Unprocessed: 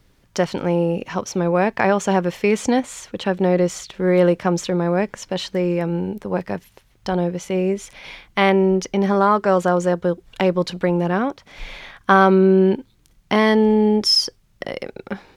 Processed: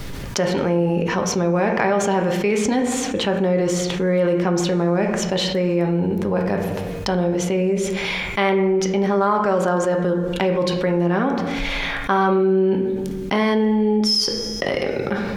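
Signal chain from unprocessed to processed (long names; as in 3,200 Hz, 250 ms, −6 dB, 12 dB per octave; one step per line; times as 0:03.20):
tuned comb filter 93 Hz, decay 1.8 s, harmonics odd, mix 50%
convolution reverb RT60 0.75 s, pre-delay 5 ms, DRR 3.5 dB
envelope flattener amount 70%
level −2 dB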